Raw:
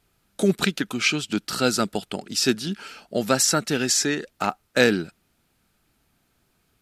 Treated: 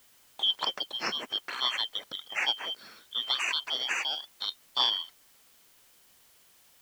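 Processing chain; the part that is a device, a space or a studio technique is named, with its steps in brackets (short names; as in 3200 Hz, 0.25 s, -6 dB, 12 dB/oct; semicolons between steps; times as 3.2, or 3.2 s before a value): split-band scrambled radio (four-band scrambler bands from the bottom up 3412; BPF 320–2900 Hz; white noise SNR 27 dB); gain -4 dB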